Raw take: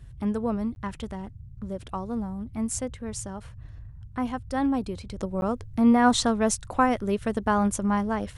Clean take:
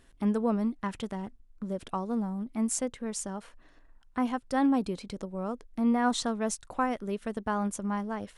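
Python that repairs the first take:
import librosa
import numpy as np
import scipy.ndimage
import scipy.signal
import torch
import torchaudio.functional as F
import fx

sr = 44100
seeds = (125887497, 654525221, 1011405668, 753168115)

y = fx.fix_interpolate(x, sr, at_s=(0.75, 5.41), length_ms=11.0)
y = fx.noise_reduce(y, sr, print_start_s=3.66, print_end_s=4.16, reduce_db=12.0)
y = fx.fix_level(y, sr, at_s=5.19, step_db=-7.0)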